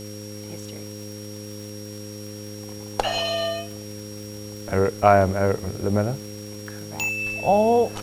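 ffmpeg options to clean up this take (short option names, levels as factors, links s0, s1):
-af "adeclick=t=4,bandreject=f=104.2:t=h:w=4,bandreject=f=208.4:t=h:w=4,bandreject=f=312.6:t=h:w=4,bandreject=f=416.8:t=h:w=4,bandreject=f=521:t=h:w=4,bandreject=f=5600:w=30,afwtdn=0.005"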